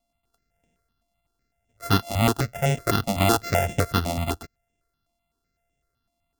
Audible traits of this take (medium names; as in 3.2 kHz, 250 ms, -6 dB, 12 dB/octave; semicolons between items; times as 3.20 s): a buzz of ramps at a fixed pitch in blocks of 64 samples; notches that jump at a steady rate 7.9 Hz 420–4400 Hz